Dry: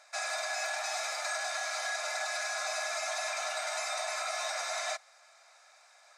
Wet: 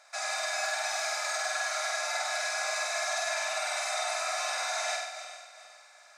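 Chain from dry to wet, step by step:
feedback delay that plays each chunk backwards 202 ms, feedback 57%, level −11.5 dB
flutter between parallel walls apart 8.3 metres, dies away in 0.89 s

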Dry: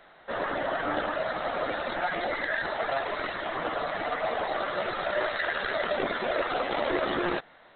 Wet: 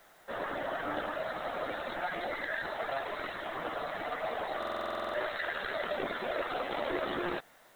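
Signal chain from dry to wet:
background noise white −61 dBFS
buffer that repeats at 0:04.58, samples 2,048, times 11
level −6 dB

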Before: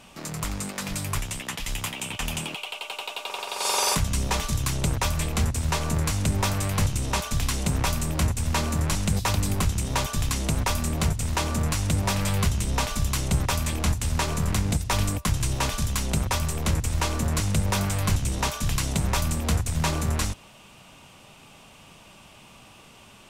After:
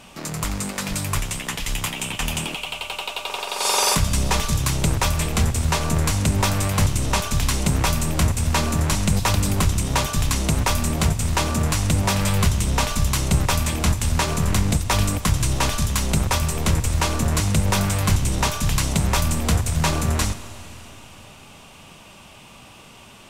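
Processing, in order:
four-comb reverb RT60 3.8 s, combs from 33 ms, DRR 13 dB
level +4.5 dB

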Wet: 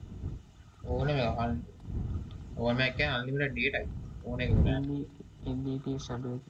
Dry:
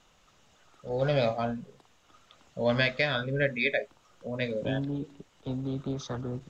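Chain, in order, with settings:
wind on the microphone 81 Hz −31 dBFS
high-pass filter 44 Hz
notch comb filter 550 Hz
level −1 dB

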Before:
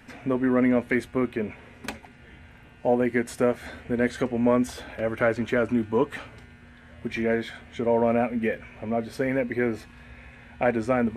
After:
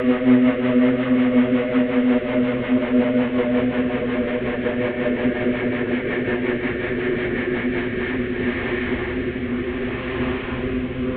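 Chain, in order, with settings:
linear delta modulator 16 kbit/s, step −25 dBFS
extreme stretch with random phases 22×, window 0.50 s, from 0:00.62
rotating-speaker cabinet horn 5.5 Hz, later 0.65 Hz, at 0:07.56
level +4 dB

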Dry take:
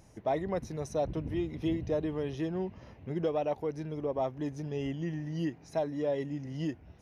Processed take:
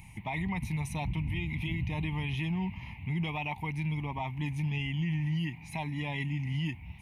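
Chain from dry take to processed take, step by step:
drawn EQ curve 180 Hz 0 dB, 540 Hz −29 dB, 910 Hz +2 dB, 1,500 Hz −21 dB, 2,200 Hz +13 dB, 5,700 Hz −14 dB, 9,000 Hz +2 dB
brickwall limiter −34 dBFS, peak gain reduction 9 dB
level +9 dB

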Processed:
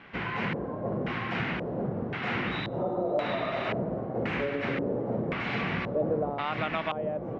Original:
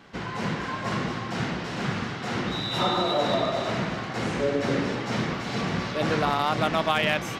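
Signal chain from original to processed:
downward compressor, threshold −26 dBFS, peak gain reduction 8 dB
auto-filter low-pass square 0.94 Hz 550–2,400 Hz
level −1.5 dB

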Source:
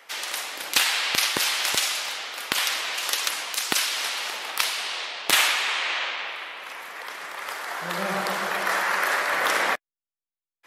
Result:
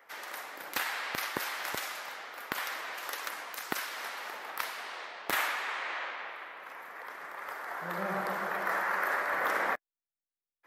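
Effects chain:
flat-topped bell 5,200 Hz −11.5 dB 2.4 octaves
level −6 dB

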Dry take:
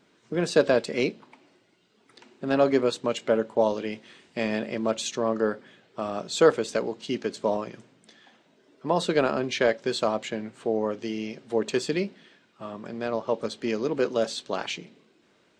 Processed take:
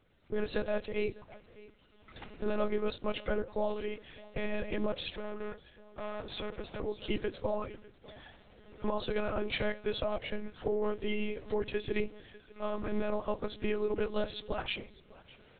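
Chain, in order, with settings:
spectral magnitudes quantised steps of 15 dB
camcorder AGC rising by 10 dB per second
high-pass filter 130 Hz 6 dB per octave
brickwall limiter −16 dBFS, peak gain reduction 10 dB
single-tap delay 602 ms −21 dB
0:05.09–0:06.80: tube saturation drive 29 dB, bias 0.65
one-pitch LPC vocoder at 8 kHz 210 Hz
level −5.5 dB

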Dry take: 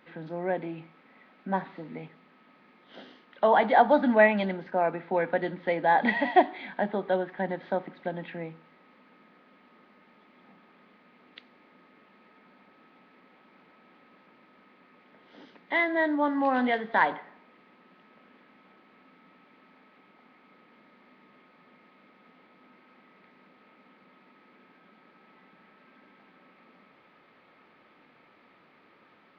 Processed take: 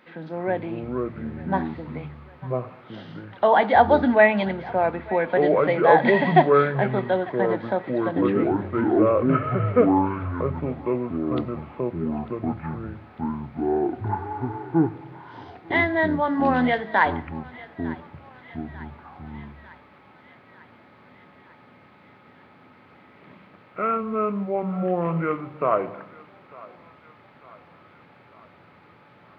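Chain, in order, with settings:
hum removal 72.64 Hz, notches 4
delay with pitch and tempo change per echo 231 ms, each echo −7 semitones, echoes 2
on a send: feedback echo with a high-pass in the loop 899 ms, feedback 69%, high-pass 700 Hz, level −19 dB
on the sum: level +4 dB

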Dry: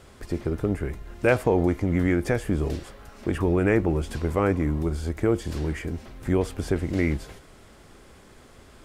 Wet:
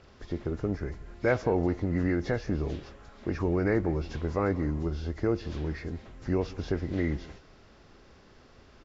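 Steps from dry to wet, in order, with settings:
hearing-aid frequency compression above 1,800 Hz 1.5 to 1
slap from a distant wall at 31 metres, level −20 dB
level −5 dB

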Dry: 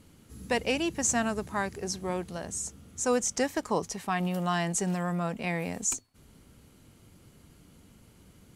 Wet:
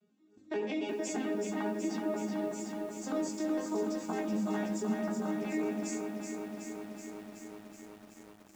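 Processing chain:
vocoder with an arpeggio as carrier major triad, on G#3, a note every 89 ms
noise gate −48 dBFS, range −9 dB
notch comb filter 260 Hz
on a send at −4 dB: convolution reverb RT60 0.65 s, pre-delay 3 ms
on the sum: chorus effect 0.98 Hz, delay 17.5 ms, depth 2.3 ms
brickwall limiter −29 dBFS, peak gain reduction 10 dB
feedback echo at a low word length 375 ms, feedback 80%, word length 10 bits, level −5.5 dB
level +2.5 dB

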